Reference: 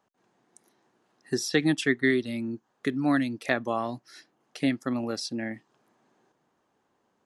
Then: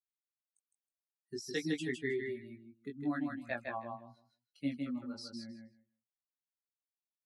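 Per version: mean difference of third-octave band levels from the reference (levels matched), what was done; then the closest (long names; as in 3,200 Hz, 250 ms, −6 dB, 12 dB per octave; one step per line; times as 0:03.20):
8.5 dB: spectral dynamics exaggerated over time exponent 2
rotating-speaker cabinet horn 5 Hz, later 1.2 Hz, at 0:04.15
chorus effect 0.54 Hz, delay 16.5 ms, depth 4.8 ms
on a send: repeating echo 158 ms, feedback 15%, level −4 dB
on the sum: level −5 dB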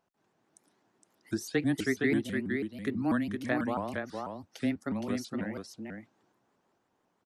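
6.5 dB: dynamic equaliser 4,300 Hz, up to −8 dB, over −46 dBFS, Q 0.82
frequency shifter −14 Hz
single-tap delay 465 ms −4.5 dB
pitch modulation by a square or saw wave saw up 6.1 Hz, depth 250 cents
level −4.5 dB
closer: second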